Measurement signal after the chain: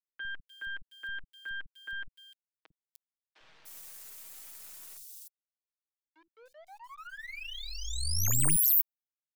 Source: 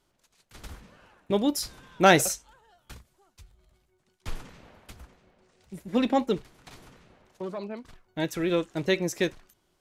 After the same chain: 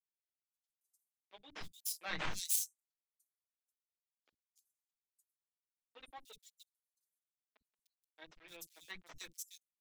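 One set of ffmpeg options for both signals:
-filter_complex "[0:a]afftdn=nr=19:nf=-49,highpass=52,aderivative,aecho=1:1:6.3:0.81,acrossover=split=7200[a][b];[a]aeval=exprs='val(0)*gte(abs(val(0)),0.00708)':c=same[c];[c][b]amix=inputs=2:normalize=0,aeval=exprs='0.299*(cos(1*acos(clip(val(0)/0.299,-1,1)))-cos(1*PI/2))+0.0668*(cos(3*acos(clip(val(0)/0.299,-1,1)))-cos(3*PI/2))+0.0841*(cos(4*acos(clip(val(0)/0.299,-1,1)))-cos(4*PI/2))+0.00944*(cos(5*acos(clip(val(0)/0.299,-1,1)))-cos(5*PI/2))':c=same,acrossover=split=250|3700[d][e][f];[d]adelay=50[g];[f]adelay=300[h];[g][e][h]amix=inputs=3:normalize=0,volume=-4.5dB"

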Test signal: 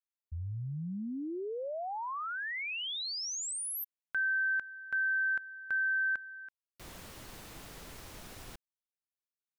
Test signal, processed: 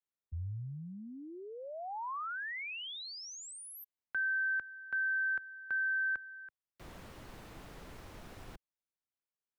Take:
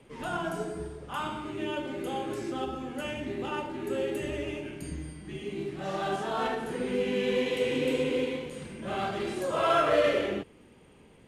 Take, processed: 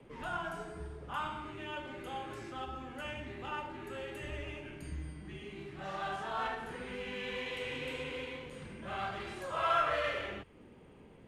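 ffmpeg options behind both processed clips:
-filter_complex "[0:a]highshelf=f=3.3k:g=-12,acrossover=split=110|840[a][b][c];[b]acompressor=threshold=-47dB:ratio=6:attack=6.8:release=284:detection=peak[d];[a][d][c]amix=inputs=3:normalize=0"

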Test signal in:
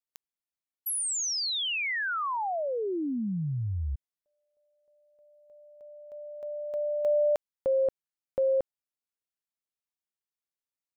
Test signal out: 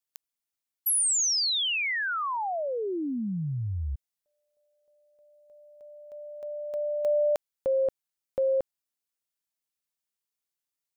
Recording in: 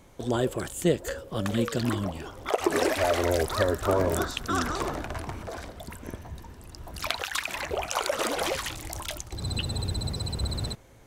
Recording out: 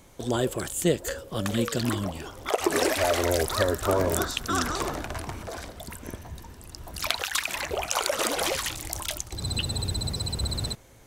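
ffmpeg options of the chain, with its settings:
-af "highshelf=f=3.5k:g=6.5"

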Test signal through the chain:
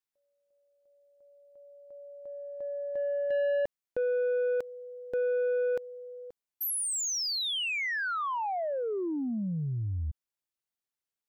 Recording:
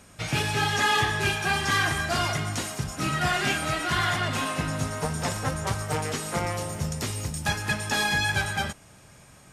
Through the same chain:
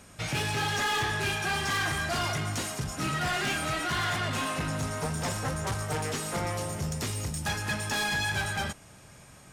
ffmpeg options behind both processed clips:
-af "asoftclip=type=tanh:threshold=-25dB"

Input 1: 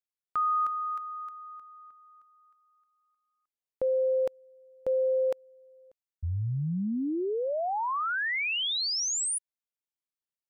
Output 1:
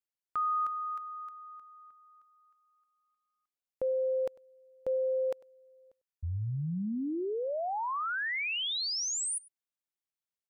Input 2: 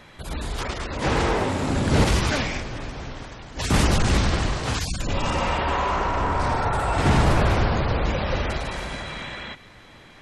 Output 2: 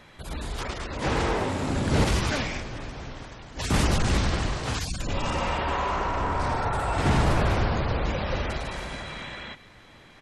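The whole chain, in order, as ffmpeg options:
-af "aecho=1:1:99:0.0708,volume=-3.5dB"

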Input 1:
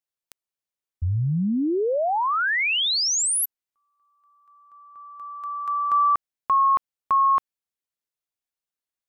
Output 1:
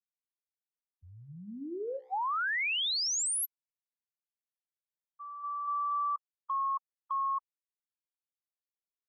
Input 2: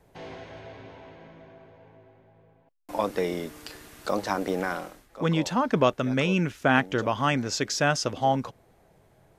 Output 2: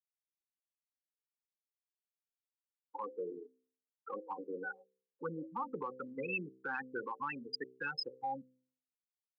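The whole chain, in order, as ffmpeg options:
-filter_complex "[0:a]acrossover=split=200|1100|3400[a][b][c][d];[b]dynaudnorm=f=240:g=13:m=4.5dB[e];[a][e][c][d]amix=inputs=4:normalize=0,afftfilt=real='re*gte(hypot(re,im),0.2)':imag='im*gte(hypot(re,im),0.2)':win_size=1024:overlap=0.75,aderivative,bandreject=f=64.17:t=h:w=4,bandreject=f=128.34:t=h:w=4,bandreject=f=192.51:t=h:w=4,bandreject=f=256.68:t=h:w=4,bandreject=f=320.85:t=h:w=4,bandreject=f=385.02:t=h:w=4,bandreject=f=449.19:t=h:w=4,bandreject=f=513.36:t=h:w=4,bandreject=f=577.53:t=h:w=4,acrossover=split=140[f][g];[g]acompressor=threshold=-39dB:ratio=3:attack=0.88:release=76:knee=2.83:detection=peak[h];[f][h]amix=inputs=2:normalize=0,alimiter=level_in=12.5dB:limit=-24dB:level=0:latency=1:release=135,volume=-12.5dB,asuperstop=centerf=650:order=20:qfactor=3.1,volume=8.5dB"

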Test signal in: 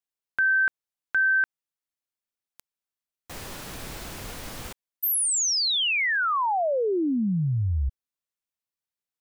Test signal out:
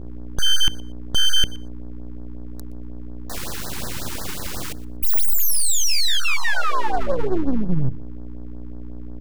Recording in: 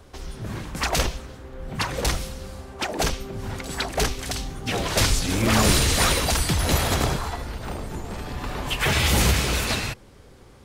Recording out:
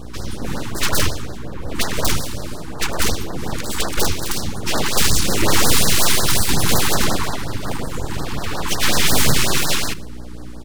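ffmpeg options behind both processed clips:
-af "aeval=exprs='val(0)+0.0112*(sin(2*PI*60*n/s)+sin(2*PI*2*60*n/s)/2+sin(2*PI*3*60*n/s)/3+sin(2*PI*4*60*n/s)/4+sin(2*PI*5*60*n/s)/5)':c=same,aeval=exprs='0.531*sin(PI/2*2*val(0)/0.531)':c=same,bandreject=f=50:t=h:w=6,bandreject=f=100:t=h:w=6,bandreject=f=150:t=h:w=6,bandreject=f=200:t=h:w=6,bandreject=f=250:t=h:w=6,bandreject=f=300:t=h:w=6,bandreject=f=350:t=h:w=6,bandreject=f=400:t=h:w=6,aeval=exprs='abs(val(0))':c=same,aecho=1:1:120|240:0.0891|0.016,afftfilt=real='re*(1-between(b*sr/1024,540*pow(2800/540,0.5+0.5*sin(2*PI*5.5*pts/sr))/1.41,540*pow(2800/540,0.5+0.5*sin(2*PI*5.5*pts/sr))*1.41))':imag='im*(1-between(b*sr/1024,540*pow(2800/540,0.5+0.5*sin(2*PI*5.5*pts/sr))/1.41,540*pow(2800/540,0.5+0.5*sin(2*PI*5.5*pts/sr))*1.41))':win_size=1024:overlap=0.75"

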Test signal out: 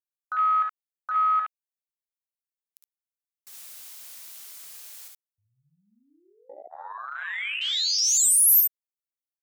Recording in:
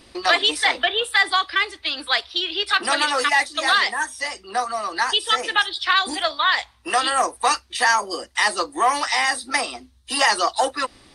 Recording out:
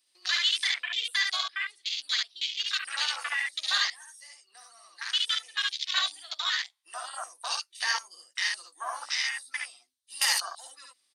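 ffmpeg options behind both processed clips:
-af "aderivative,aecho=1:1:56|70:0.473|0.668,afwtdn=0.0355"

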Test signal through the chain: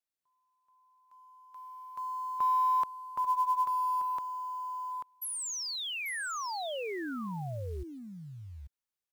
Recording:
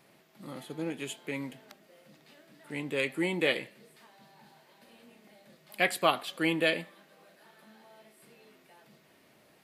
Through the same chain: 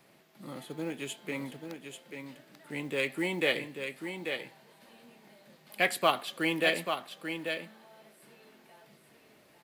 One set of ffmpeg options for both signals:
-filter_complex "[0:a]acrossover=split=440|3000[a][b][c];[a]acompressor=threshold=-38dB:ratio=1.5[d];[d][b][c]amix=inputs=3:normalize=0,aecho=1:1:839:0.447,acrusher=bits=7:mode=log:mix=0:aa=0.000001"

